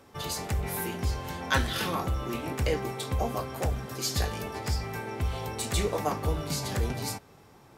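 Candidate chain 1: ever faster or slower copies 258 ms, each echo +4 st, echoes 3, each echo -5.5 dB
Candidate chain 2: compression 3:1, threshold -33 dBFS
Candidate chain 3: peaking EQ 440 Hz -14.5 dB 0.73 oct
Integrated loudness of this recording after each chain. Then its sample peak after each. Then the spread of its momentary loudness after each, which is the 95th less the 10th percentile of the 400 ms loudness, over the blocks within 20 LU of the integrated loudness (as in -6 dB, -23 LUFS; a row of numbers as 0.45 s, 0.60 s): -30.0 LUFS, -36.0 LUFS, -32.5 LUFS; -9.5 dBFS, -16.5 dBFS, -11.0 dBFS; 4 LU, 3 LU, 6 LU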